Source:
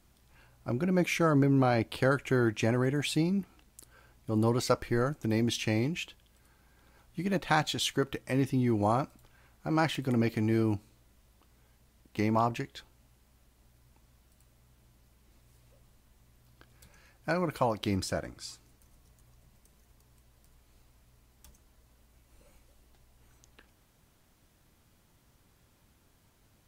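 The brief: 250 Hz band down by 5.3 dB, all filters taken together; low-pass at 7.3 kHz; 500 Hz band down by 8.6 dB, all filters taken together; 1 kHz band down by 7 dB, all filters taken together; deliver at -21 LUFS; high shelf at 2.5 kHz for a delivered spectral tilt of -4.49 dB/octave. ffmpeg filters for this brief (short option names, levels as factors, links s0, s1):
-af "lowpass=7300,equalizer=f=250:t=o:g=-4,equalizer=f=500:t=o:g=-8.5,equalizer=f=1000:t=o:g=-7.5,highshelf=f=2500:g=6,volume=3.98"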